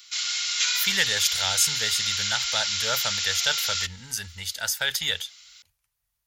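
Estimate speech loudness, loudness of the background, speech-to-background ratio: −26.5 LKFS, −24.5 LKFS, −2.0 dB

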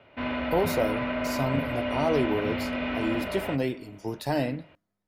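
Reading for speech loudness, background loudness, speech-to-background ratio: −30.0 LKFS, −30.5 LKFS, 0.5 dB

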